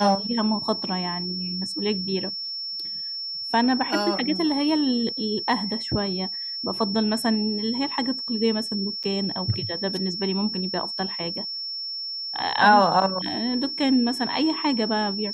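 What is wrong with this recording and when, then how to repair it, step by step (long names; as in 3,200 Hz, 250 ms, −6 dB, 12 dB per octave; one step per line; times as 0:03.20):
whistle 5,400 Hz −29 dBFS
0:09.03–0:09.04: drop-out 7.7 ms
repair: notch filter 5,400 Hz, Q 30
repair the gap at 0:09.03, 7.7 ms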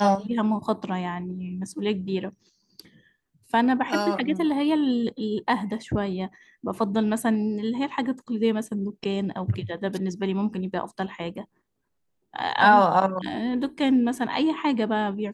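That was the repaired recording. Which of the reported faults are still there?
none of them is left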